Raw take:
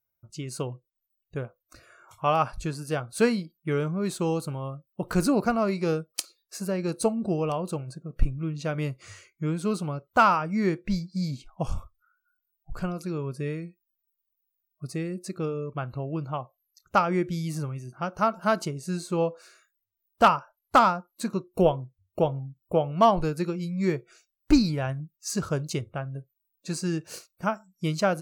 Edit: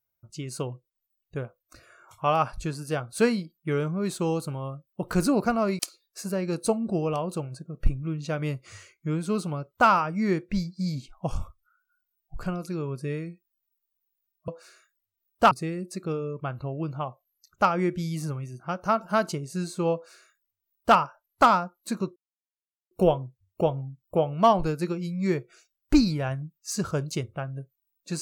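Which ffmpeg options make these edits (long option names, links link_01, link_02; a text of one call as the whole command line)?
ffmpeg -i in.wav -filter_complex "[0:a]asplit=5[link_01][link_02][link_03][link_04][link_05];[link_01]atrim=end=5.792[link_06];[link_02]atrim=start=6.148:end=14.842[link_07];[link_03]atrim=start=19.268:end=20.302[link_08];[link_04]atrim=start=14.838:end=21.49,asetpts=PTS-STARTPTS,afade=type=out:start_time=6.648:duration=0.004:curve=hsin,apad=pad_dur=0.75[link_09];[link_05]atrim=start=21.49,asetpts=PTS-STARTPTS,afade=type=in:duration=0.004:curve=hsin[link_10];[link_06][link_07]acrossfade=duration=0.004:curve1=hsin:curve2=hsin[link_11];[link_11][link_08]acrossfade=duration=0.004:curve1=hsin:curve2=hsin[link_12];[link_09][link_10]concat=n=2:v=0:a=1[link_13];[link_12][link_13]acrossfade=duration=0.004:curve1=hsin:curve2=hsin" out.wav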